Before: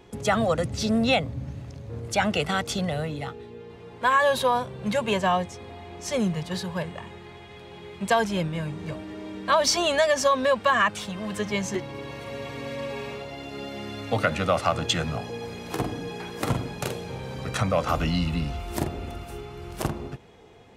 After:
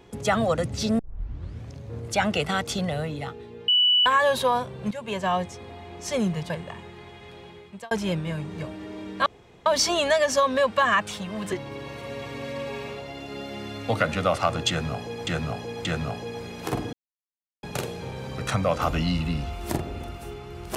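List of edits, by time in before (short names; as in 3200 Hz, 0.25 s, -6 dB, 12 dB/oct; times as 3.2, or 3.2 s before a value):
0.99 tape start 0.71 s
3.68–4.06 bleep 2960 Hz -16 dBFS
4.91–5.43 fade in, from -14.5 dB
6.5–6.78 cut
7.67–8.19 fade out
9.54 insert room tone 0.40 s
11.4–11.75 cut
14.92–15.5 loop, 3 plays
16–16.7 mute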